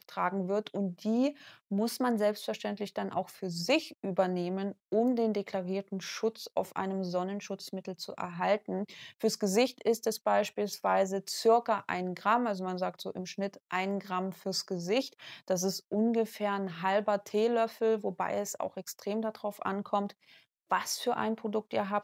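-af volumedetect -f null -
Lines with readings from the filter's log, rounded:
mean_volume: -32.0 dB
max_volume: -13.2 dB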